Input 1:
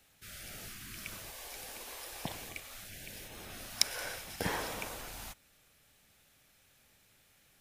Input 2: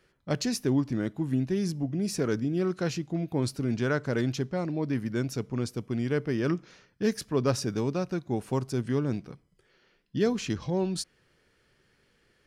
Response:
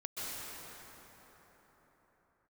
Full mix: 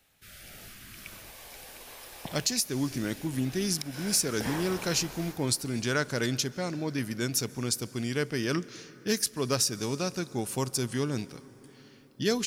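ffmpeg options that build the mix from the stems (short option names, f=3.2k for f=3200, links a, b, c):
-filter_complex "[0:a]equalizer=f=7.3k:w=1.5:g=-2.5,volume=-2dB,asplit=2[a][b];[b]volume=-9.5dB[c];[1:a]crystalizer=i=7:c=0,adelay=2050,volume=-3.5dB,asplit=2[d][e];[e]volume=-21dB[f];[2:a]atrim=start_sample=2205[g];[c][f]amix=inputs=2:normalize=0[h];[h][g]afir=irnorm=-1:irlink=0[i];[a][d][i]amix=inputs=3:normalize=0,alimiter=limit=-14dB:level=0:latency=1:release=312"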